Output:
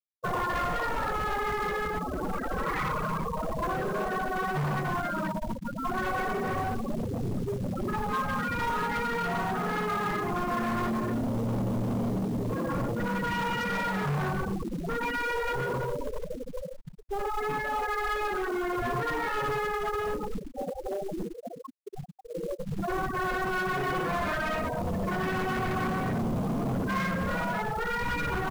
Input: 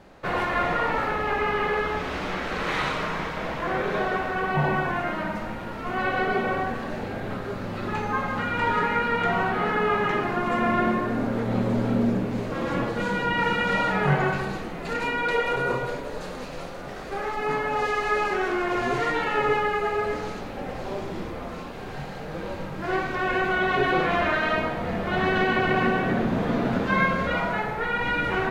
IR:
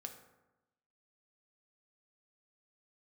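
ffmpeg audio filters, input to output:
-filter_complex "[0:a]asettb=1/sr,asplit=3[a][b][c];[a]atrim=end=20.394[d];[b]atrim=start=20.39:end=22.68,asetpts=PTS-STARTPTS,afade=t=in:d=0.004:c=qsin,afade=t=out:st=2.286:d=0.004:c=qsin,bass=f=250:g=-5,treble=f=4k:g=2[e];[c]atrim=start=22.676[f];[d][e]acrossfade=d=0.004:c1=hsin:c2=qsin[g];[g][f]acrossfade=d=0.004:c1=qsin:c2=hsin,aecho=1:1:30|62:0.168|0.473,afftfilt=real='re*gte(hypot(re,im),0.112)':imag='im*gte(hypot(re,im),0.112)':win_size=1024:overlap=0.75,asoftclip=type=tanh:threshold=-17dB,acrossover=split=150[h][i];[i]acompressor=threshold=-37dB:ratio=2.5[j];[h][j]amix=inputs=2:normalize=0,asoftclip=type=hard:threshold=-32.5dB,equalizer=f=1.1k:t=o:w=0.34:g=4.5,acrusher=bits=5:mode=log:mix=0:aa=0.000001,volume=5.5dB"

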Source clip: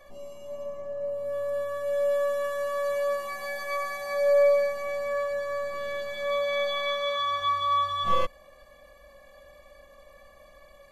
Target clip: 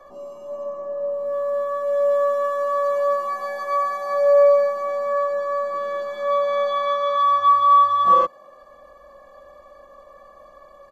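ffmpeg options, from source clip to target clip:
-filter_complex "[0:a]firequalizer=gain_entry='entry(100,0);entry(340,9);entry(600,7);entry(1200,13);entry(2100,-6);entry(3600,-3);entry(5800,0);entry(8700,-6)':delay=0.05:min_phase=1,acrossover=split=120|990[a][b][c];[a]acompressor=threshold=-56dB:ratio=6[d];[d][b][c]amix=inputs=3:normalize=0,volume=-1dB"

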